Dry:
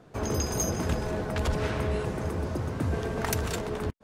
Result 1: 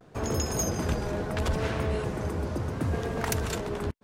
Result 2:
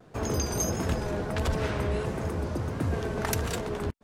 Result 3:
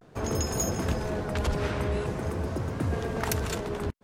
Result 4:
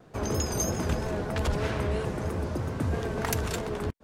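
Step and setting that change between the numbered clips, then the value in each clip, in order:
vibrato, rate: 0.73, 1.5, 0.45, 3.1 Hz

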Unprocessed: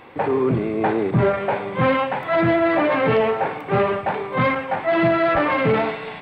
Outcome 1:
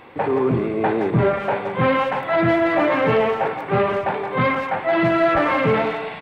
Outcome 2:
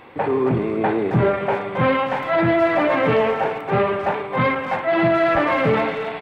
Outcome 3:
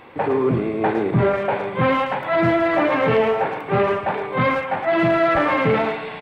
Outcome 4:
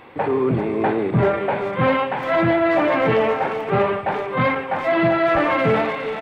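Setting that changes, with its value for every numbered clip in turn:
speakerphone echo, time: 0.17, 0.27, 0.11, 0.39 s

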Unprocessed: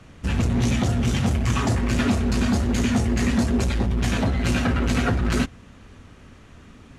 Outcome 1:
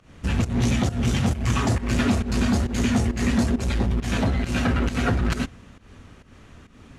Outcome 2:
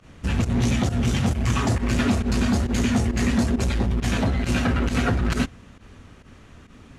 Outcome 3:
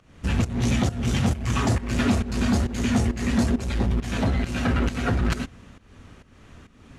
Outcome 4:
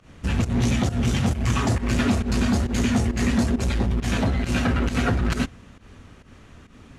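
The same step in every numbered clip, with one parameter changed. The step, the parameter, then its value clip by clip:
pump, release: 199, 83, 377, 131 ms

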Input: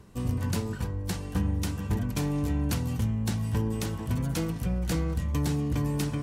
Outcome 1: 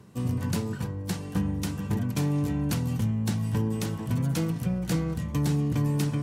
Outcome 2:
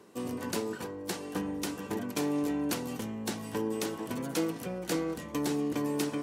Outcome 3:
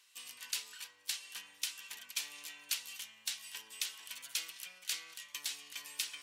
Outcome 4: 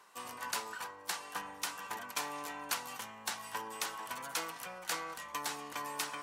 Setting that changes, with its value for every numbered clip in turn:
resonant high-pass, frequency: 130, 340, 2900, 1000 Hz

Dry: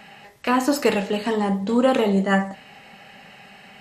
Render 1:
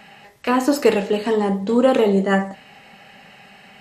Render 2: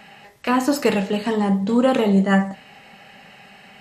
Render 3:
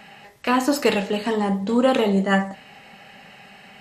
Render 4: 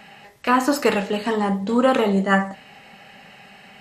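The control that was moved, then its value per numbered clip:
dynamic EQ, frequency: 400, 160, 3600, 1300 Hz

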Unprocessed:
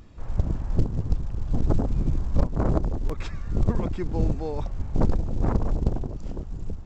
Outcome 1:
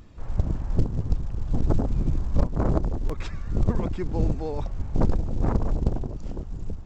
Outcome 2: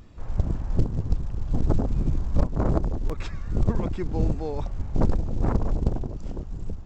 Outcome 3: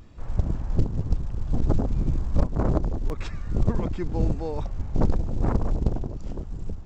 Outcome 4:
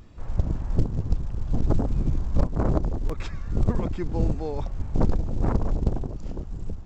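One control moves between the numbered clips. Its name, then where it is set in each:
vibrato, rate: 13, 2.6, 0.96, 1.7 Hz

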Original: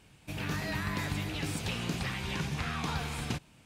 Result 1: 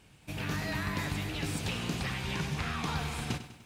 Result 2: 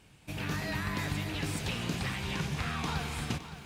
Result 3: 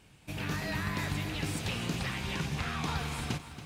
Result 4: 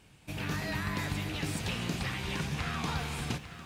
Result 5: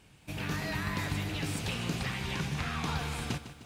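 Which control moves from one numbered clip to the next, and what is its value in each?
lo-fi delay, time: 99, 564, 279, 849, 153 ms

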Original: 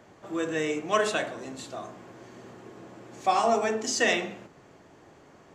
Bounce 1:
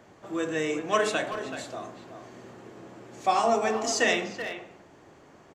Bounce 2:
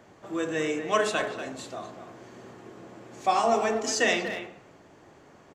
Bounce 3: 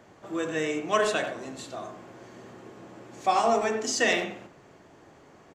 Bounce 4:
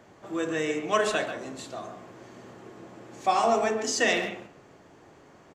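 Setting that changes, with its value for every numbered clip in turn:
speakerphone echo, time: 380, 240, 90, 140 ms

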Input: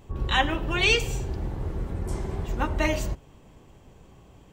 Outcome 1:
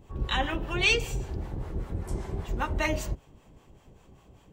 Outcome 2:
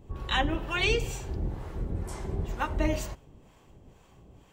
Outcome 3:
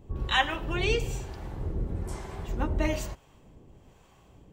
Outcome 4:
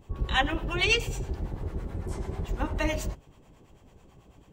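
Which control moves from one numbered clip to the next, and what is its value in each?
harmonic tremolo, rate: 5.1, 2.1, 1.1, 9.1 Hz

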